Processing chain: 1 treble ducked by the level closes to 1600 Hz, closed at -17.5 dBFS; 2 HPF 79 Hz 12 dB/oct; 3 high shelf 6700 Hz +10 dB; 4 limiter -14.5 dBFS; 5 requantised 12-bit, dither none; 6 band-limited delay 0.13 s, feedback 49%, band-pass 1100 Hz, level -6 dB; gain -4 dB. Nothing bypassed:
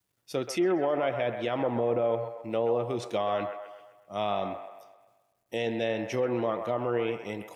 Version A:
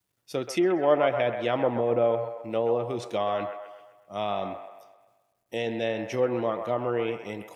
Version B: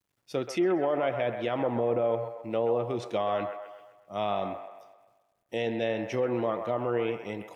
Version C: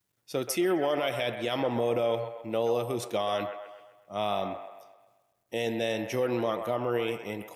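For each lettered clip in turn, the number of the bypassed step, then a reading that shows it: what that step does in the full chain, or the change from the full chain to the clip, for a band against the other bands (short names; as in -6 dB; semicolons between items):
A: 4, crest factor change +5.0 dB; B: 3, 4 kHz band -2.0 dB; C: 1, 4 kHz band +5.0 dB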